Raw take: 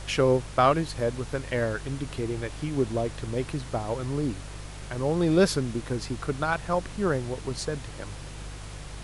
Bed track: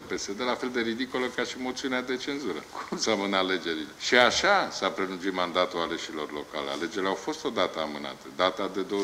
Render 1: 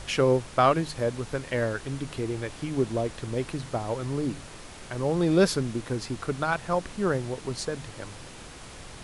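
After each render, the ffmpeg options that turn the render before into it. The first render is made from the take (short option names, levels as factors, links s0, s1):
-af "bandreject=f=50:t=h:w=4,bandreject=f=100:t=h:w=4,bandreject=f=150:t=h:w=4"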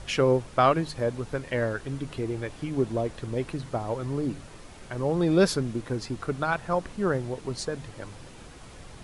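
-af "afftdn=nr=6:nf=-44"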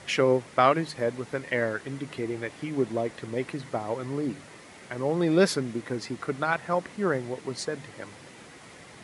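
-af "highpass=160,equalizer=f=2000:w=4.3:g=8"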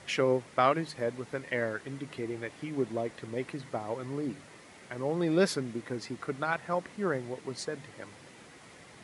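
-af "volume=0.596"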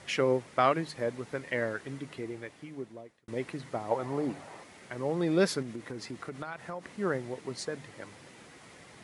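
-filter_complex "[0:a]asettb=1/sr,asplit=3[s0][s1][s2];[s0]atrim=end=3.914[s3];[s1]atrim=start=3.91:end=4.64,asetpts=PTS-STARTPTS,afade=t=in:d=0.004:c=qsin,afade=t=out:st=0.726:d=0.004:c=qsin,equalizer=f=780:t=o:w=1.1:g=12.5[s4];[s2]atrim=start=4.636[s5];[s3][s4]acrossfade=d=0.004:c1=hsin:c2=qsin[s6];[s6][s5]acrossfade=d=0.004:c1=qsin:c2=hsin,asettb=1/sr,asplit=3[s7][s8][s9];[s7]atrim=end=5.624[s10];[s8]atrim=start=5.62:end=6.87,asetpts=PTS-STARTPTS,afade=t=in:d=0.004:c=qsin,afade=t=out:st=1.246:d=0.004:c=qsin,acompressor=threshold=0.02:ratio=6:attack=3.2:release=140:knee=1:detection=peak[s11];[s9]atrim=start=6.866[s12];[s10][s11]acrossfade=d=0.004:c1=hsin:c2=qsin[s13];[s13][s12]acrossfade=d=0.004:c1=qsin:c2=hsin,asplit=2[s14][s15];[s14]atrim=end=3.28,asetpts=PTS-STARTPTS,afade=t=out:st=1.91:d=1.37[s16];[s15]atrim=start=3.28,asetpts=PTS-STARTPTS,afade=t=in:d=0.004:c=hsin[s17];[s16][s17]concat=n=2:v=0:a=1"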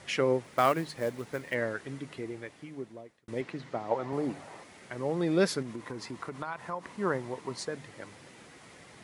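-filter_complex "[0:a]asplit=3[s0][s1][s2];[s0]afade=t=out:st=0.43:d=0.02[s3];[s1]acrusher=bits=5:mode=log:mix=0:aa=0.000001,afade=t=in:st=0.43:d=0.02,afade=t=out:st=1.53:d=0.02[s4];[s2]afade=t=in:st=1.53:d=0.02[s5];[s3][s4][s5]amix=inputs=3:normalize=0,asettb=1/sr,asplit=3[s6][s7][s8];[s6]atrim=end=3.414[s9];[s7]atrim=start=3.41:end=4.13,asetpts=PTS-STARTPTS,afade=t=in:d=0.004:c=qsin,afade=t=out:st=0.716:d=0.004:c=qsin,highpass=110,lowpass=5700[s10];[s8]atrim=start=4.126[s11];[s9][s10]acrossfade=d=0.004:c1=hsin:c2=qsin[s12];[s12][s11]acrossfade=d=0.004:c1=qsin:c2=hsin,asettb=1/sr,asplit=3[s13][s14][s15];[s13]atrim=end=5.654[s16];[s14]atrim=start=5.65:end=7.64,asetpts=PTS-STARTPTS,afade=t=in:d=0.004:c=qsin,afade=t=out:st=1.986:d=0.004:c=qsin,equalizer=f=1000:w=3.7:g=10[s17];[s15]atrim=start=7.636[s18];[s16][s17]acrossfade=d=0.004:c1=hsin:c2=qsin[s19];[s19][s18]acrossfade=d=0.004:c1=qsin:c2=hsin"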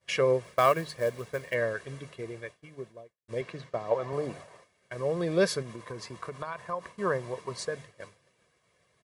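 -af "agate=range=0.0224:threshold=0.01:ratio=3:detection=peak,aecho=1:1:1.8:0.64"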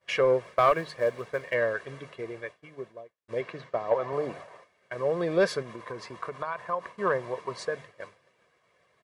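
-filter_complex "[0:a]asplit=2[s0][s1];[s1]highpass=f=720:p=1,volume=3.98,asoftclip=type=tanh:threshold=0.316[s2];[s0][s2]amix=inputs=2:normalize=0,lowpass=f=1500:p=1,volume=0.501"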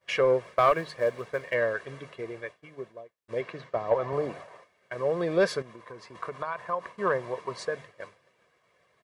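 -filter_complex "[0:a]asettb=1/sr,asplit=3[s0][s1][s2];[s0]atrim=end=3.764[s3];[s1]atrim=start=3.76:end=4.27,asetpts=PTS-STARTPTS,afade=t=in:d=0.004:c=qsin,afade=t=out:st=0.506:d=0.004:c=qsin,lowshelf=f=130:g=10[s4];[s2]atrim=start=4.266[s5];[s3][s4]acrossfade=d=0.004:c1=hsin:c2=qsin[s6];[s6][s5]acrossfade=d=0.004:c1=qsin:c2=hsin,asplit=3[s7][s8][s9];[s7]atrim=end=5.622[s10];[s8]atrim=start=5.618:end=6.152,asetpts=PTS-STARTPTS,volume=0.501[s11];[s9]atrim=start=6.148[s12];[s10][s11]acrossfade=d=0.004:c1=hsin:c2=hsin[s13];[s13][s12]acrossfade=d=0.004:c1=hsin:c2=hsin"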